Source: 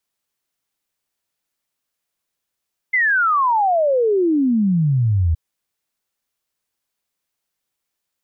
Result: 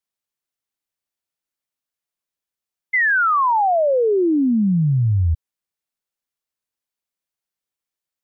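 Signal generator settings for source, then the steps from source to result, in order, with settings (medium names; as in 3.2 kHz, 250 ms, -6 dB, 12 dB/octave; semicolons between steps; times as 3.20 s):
log sweep 2.1 kHz -> 77 Hz 2.42 s -13.5 dBFS
upward expansion 1.5:1, over -34 dBFS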